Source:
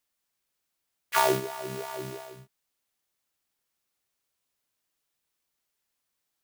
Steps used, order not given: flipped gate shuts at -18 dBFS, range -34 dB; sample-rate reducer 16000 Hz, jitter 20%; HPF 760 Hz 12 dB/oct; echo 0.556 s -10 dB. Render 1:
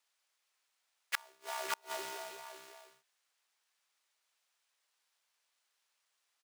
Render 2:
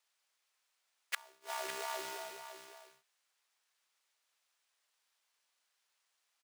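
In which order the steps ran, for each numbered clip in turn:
echo > sample-rate reducer > flipped gate > HPF; sample-rate reducer > HPF > flipped gate > echo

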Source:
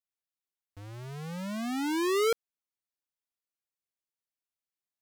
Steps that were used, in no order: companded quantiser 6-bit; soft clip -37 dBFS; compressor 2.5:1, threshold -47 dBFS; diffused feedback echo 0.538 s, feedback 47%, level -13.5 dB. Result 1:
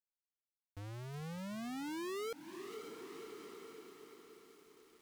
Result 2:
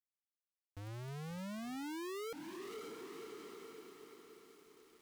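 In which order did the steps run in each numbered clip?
diffused feedback echo > compressor > companded quantiser > soft clip; diffused feedback echo > soft clip > companded quantiser > compressor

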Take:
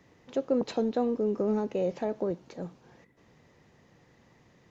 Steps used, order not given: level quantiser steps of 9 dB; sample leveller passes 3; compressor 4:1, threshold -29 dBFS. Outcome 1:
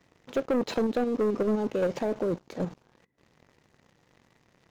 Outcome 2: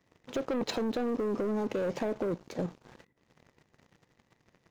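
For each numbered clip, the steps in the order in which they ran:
level quantiser > compressor > sample leveller; sample leveller > level quantiser > compressor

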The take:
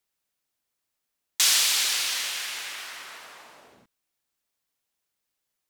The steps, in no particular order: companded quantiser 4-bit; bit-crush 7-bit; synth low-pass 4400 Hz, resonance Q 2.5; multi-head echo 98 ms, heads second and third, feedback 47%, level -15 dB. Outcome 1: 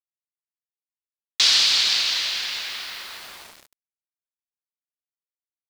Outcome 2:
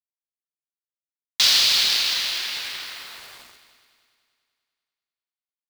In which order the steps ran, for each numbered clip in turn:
multi-head echo > companded quantiser > synth low-pass > bit-crush; synth low-pass > bit-crush > companded quantiser > multi-head echo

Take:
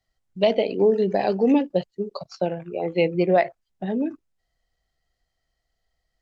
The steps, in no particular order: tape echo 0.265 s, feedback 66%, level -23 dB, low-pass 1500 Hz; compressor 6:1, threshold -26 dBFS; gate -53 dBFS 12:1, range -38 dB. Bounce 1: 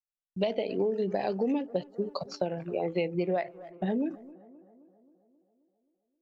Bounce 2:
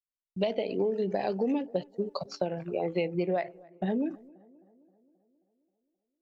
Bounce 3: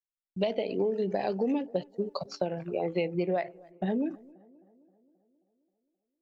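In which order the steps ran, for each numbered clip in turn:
gate > tape echo > compressor; compressor > gate > tape echo; gate > compressor > tape echo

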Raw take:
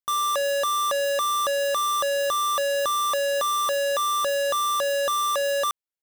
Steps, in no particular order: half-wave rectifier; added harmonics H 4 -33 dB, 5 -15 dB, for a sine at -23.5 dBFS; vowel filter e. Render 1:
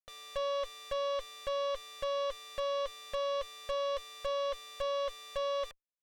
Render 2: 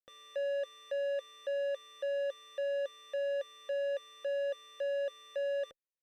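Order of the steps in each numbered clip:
vowel filter > half-wave rectifier > added harmonics; half-wave rectifier > added harmonics > vowel filter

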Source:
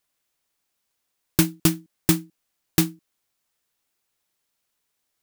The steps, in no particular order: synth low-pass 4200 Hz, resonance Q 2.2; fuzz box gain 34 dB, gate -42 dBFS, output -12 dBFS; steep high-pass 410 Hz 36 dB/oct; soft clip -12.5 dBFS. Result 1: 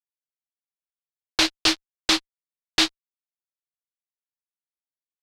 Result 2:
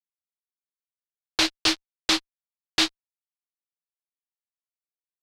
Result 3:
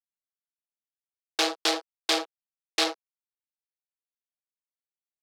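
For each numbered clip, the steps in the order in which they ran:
steep high-pass > soft clip > fuzz box > synth low-pass; steep high-pass > fuzz box > soft clip > synth low-pass; fuzz box > synth low-pass > soft clip > steep high-pass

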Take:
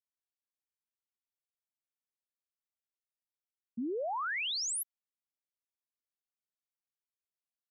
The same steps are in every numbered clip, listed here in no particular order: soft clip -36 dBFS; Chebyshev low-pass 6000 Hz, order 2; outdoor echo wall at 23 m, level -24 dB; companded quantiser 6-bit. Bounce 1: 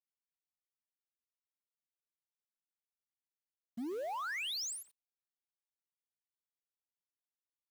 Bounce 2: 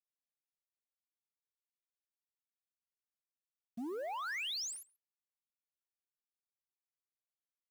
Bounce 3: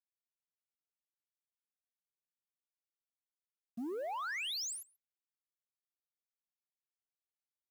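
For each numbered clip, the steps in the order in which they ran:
Chebyshev low-pass > soft clip > outdoor echo > companded quantiser; soft clip > Chebyshev low-pass > companded quantiser > outdoor echo; Chebyshev low-pass > companded quantiser > soft clip > outdoor echo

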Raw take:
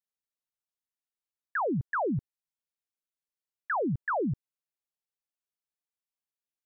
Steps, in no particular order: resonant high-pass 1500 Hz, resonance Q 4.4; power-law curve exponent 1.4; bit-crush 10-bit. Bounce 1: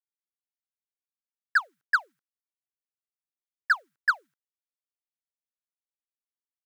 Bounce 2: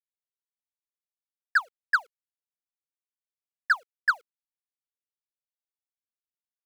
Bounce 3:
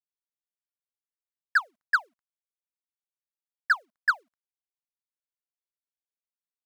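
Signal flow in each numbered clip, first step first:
bit-crush > resonant high-pass > power-law curve; resonant high-pass > power-law curve > bit-crush; resonant high-pass > bit-crush > power-law curve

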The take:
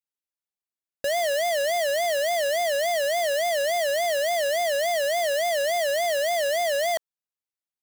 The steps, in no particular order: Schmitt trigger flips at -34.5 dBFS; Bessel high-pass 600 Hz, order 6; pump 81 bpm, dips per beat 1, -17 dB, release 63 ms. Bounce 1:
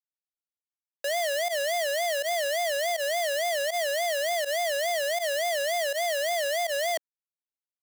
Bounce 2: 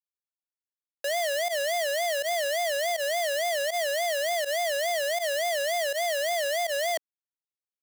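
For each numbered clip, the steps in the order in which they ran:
Schmitt trigger > pump > Bessel high-pass; Schmitt trigger > Bessel high-pass > pump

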